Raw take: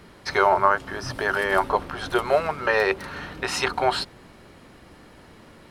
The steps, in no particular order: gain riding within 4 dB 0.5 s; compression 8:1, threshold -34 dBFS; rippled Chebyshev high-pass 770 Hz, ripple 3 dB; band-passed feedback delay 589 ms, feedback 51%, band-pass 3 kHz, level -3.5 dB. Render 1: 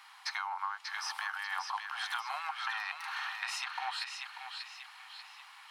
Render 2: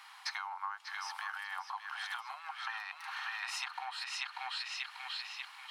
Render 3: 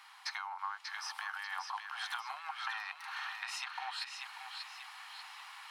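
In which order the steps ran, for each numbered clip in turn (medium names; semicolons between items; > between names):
rippled Chebyshev high-pass > compression > gain riding > band-passed feedback delay; gain riding > band-passed feedback delay > compression > rippled Chebyshev high-pass; compression > rippled Chebyshev high-pass > gain riding > band-passed feedback delay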